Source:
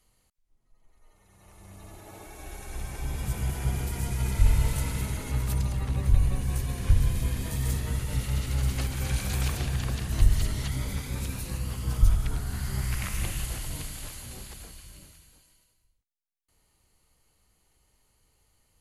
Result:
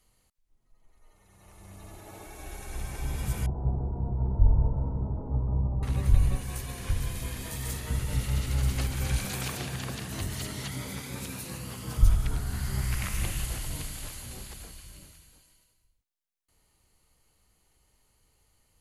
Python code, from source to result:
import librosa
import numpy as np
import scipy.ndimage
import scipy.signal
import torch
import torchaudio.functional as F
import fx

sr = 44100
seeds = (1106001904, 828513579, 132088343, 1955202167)

y = fx.steep_lowpass(x, sr, hz=960.0, slope=36, at=(3.46, 5.83))
y = fx.low_shelf(y, sr, hz=290.0, db=-8.5, at=(6.37, 7.9))
y = fx.highpass(y, sr, hz=150.0, slope=12, at=(9.25, 11.97))